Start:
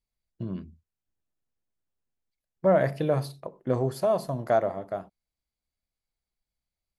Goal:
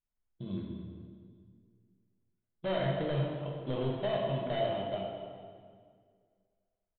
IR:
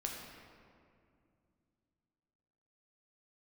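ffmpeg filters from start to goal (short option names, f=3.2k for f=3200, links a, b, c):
-filter_complex "[0:a]lowpass=2.9k,bandreject=f=60:t=h:w=4,bandreject=f=120:t=h:w=4,bandreject=f=180:t=h:w=4,bandreject=f=240:t=h:w=4,bandreject=f=300:t=h:w=4,bandreject=f=360:t=h:w=4,bandreject=f=420:t=h:w=4,bandreject=f=480:t=h:w=4,bandreject=f=540:t=h:w=4,bandreject=f=600:t=h:w=4,bandreject=f=660:t=h:w=4,bandreject=f=720:t=h:w=4,bandreject=f=780:t=h:w=4,bandreject=f=840:t=h:w=4,bandreject=f=900:t=h:w=4,bandreject=f=960:t=h:w=4,bandreject=f=1.02k:t=h:w=4,bandreject=f=1.08k:t=h:w=4,bandreject=f=1.14k:t=h:w=4,bandreject=f=1.2k:t=h:w=4,bandreject=f=1.26k:t=h:w=4,bandreject=f=1.32k:t=h:w=4,bandreject=f=1.38k:t=h:w=4,bandreject=f=1.44k:t=h:w=4,bandreject=f=1.5k:t=h:w=4,bandreject=f=1.56k:t=h:w=4,bandreject=f=1.62k:t=h:w=4,bandreject=f=1.68k:t=h:w=4,bandreject=f=1.74k:t=h:w=4,bandreject=f=1.8k:t=h:w=4,bandreject=f=1.86k:t=h:w=4,bandreject=f=1.92k:t=h:w=4,bandreject=f=1.98k:t=h:w=4,bandreject=f=2.04k:t=h:w=4,bandreject=f=2.1k:t=h:w=4,bandreject=f=2.16k:t=h:w=4,asplit=2[a][b];[b]alimiter=limit=-19dB:level=0:latency=1,volume=3dB[c];[a][c]amix=inputs=2:normalize=0,acrusher=samples=12:mix=1:aa=0.000001,aresample=8000,asoftclip=type=hard:threshold=-16.5dB,aresample=44100,aecho=1:1:212|424|636|848:0.2|0.0918|0.0422|0.0194[d];[1:a]atrim=start_sample=2205,asetrate=61740,aresample=44100[e];[d][e]afir=irnorm=-1:irlink=0,volume=-9dB"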